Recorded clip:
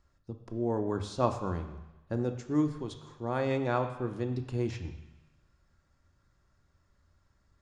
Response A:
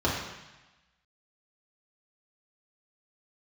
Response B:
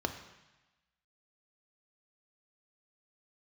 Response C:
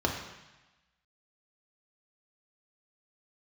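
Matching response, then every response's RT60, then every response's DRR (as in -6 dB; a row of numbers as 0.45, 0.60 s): B; 1.1, 1.1, 1.1 s; -6.0, 6.0, 0.5 dB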